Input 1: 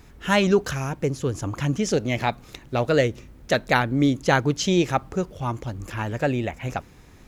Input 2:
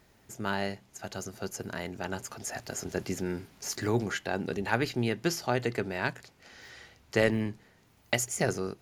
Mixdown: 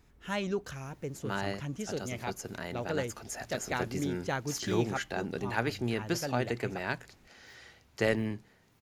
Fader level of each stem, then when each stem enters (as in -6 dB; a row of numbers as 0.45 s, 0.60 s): -14.0 dB, -3.0 dB; 0.00 s, 0.85 s